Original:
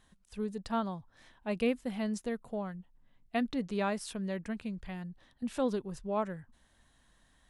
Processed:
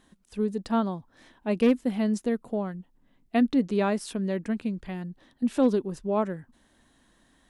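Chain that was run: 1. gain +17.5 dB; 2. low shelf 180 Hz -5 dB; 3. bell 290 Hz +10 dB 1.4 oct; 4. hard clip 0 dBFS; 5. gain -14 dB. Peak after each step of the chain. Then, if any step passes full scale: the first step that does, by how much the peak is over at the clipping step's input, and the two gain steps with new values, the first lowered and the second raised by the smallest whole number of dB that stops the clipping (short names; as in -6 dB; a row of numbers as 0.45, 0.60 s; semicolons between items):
-2.0, -2.5, +3.0, 0.0, -14.0 dBFS; step 3, 3.0 dB; step 1 +14.5 dB, step 5 -11 dB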